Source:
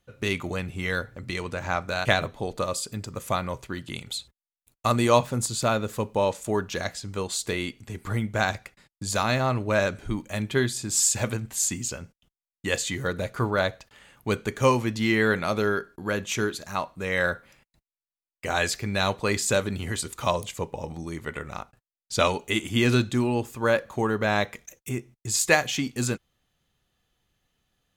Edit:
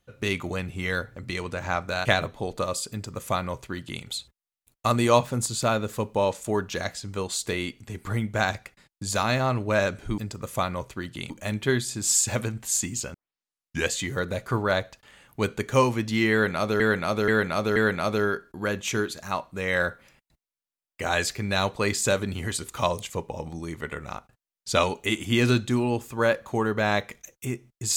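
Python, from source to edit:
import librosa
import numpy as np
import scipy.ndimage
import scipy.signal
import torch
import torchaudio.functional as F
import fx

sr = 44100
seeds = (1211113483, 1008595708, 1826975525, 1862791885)

y = fx.edit(x, sr, fx.duplicate(start_s=2.91, length_s=1.12, to_s=10.18),
    fx.tape_start(start_s=12.02, length_s=0.76),
    fx.repeat(start_s=15.2, length_s=0.48, count=4), tone=tone)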